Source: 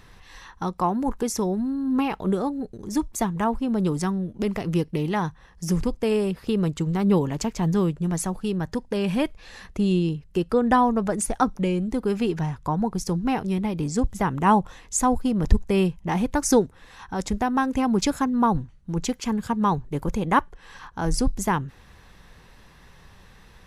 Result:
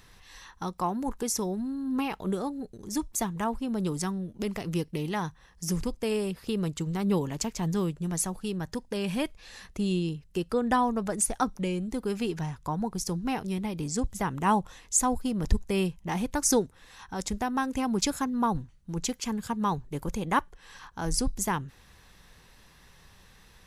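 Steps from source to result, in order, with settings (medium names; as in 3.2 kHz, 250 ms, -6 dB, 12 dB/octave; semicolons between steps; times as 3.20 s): treble shelf 3.3 kHz +9 dB; trim -6.5 dB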